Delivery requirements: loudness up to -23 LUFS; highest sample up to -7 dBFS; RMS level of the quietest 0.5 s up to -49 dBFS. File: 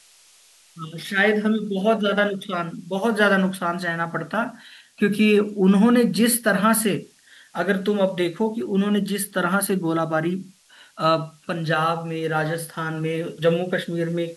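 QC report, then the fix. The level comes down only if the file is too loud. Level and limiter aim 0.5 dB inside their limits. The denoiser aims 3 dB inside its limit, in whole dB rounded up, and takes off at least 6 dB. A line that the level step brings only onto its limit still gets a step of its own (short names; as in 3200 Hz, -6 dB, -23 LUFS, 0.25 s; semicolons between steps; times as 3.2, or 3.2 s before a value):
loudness -22.0 LUFS: fail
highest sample -5.0 dBFS: fail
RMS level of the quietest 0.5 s -54 dBFS: OK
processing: gain -1.5 dB; limiter -7.5 dBFS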